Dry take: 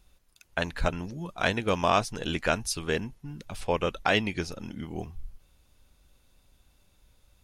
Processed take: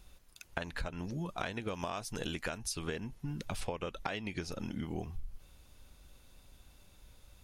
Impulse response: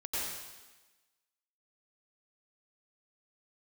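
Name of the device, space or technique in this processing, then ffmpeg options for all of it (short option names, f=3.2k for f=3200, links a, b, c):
serial compression, leveller first: -filter_complex "[0:a]asettb=1/sr,asplit=3[a][b][c];[a]atrim=end=1.744[d];[b]atrim=start=1.74:end=2.58,asetpts=PTS-STARTPTS,afade=t=in:d=0.004:c=qsin,afade=t=out:st=0.836:d=0.004:c=qsin,highshelf=f=9k:g=11[e];[c]atrim=start=2.576[f];[d][e]acrossfade=d=0.004:c1=hsin:c2=qsin[g];[g][f]acrossfade=d=0.004:c1=qsin:c2=hsin,acompressor=threshold=-27dB:ratio=2.5,acompressor=threshold=-38dB:ratio=10,volume=4dB"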